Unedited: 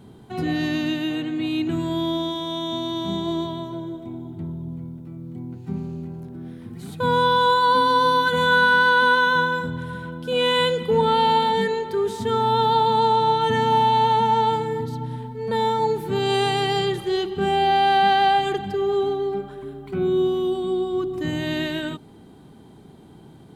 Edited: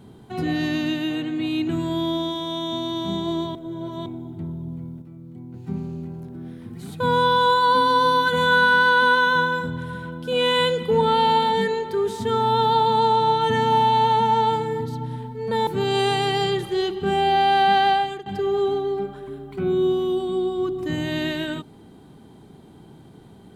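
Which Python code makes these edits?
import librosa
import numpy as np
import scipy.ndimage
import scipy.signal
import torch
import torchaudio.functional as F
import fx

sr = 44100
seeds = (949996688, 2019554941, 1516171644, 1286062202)

y = fx.edit(x, sr, fx.reverse_span(start_s=3.55, length_s=0.51),
    fx.clip_gain(start_s=5.02, length_s=0.52, db=-5.0),
    fx.cut(start_s=15.67, length_s=0.35),
    fx.fade_out_to(start_s=18.22, length_s=0.39, floor_db=-18.0), tone=tone)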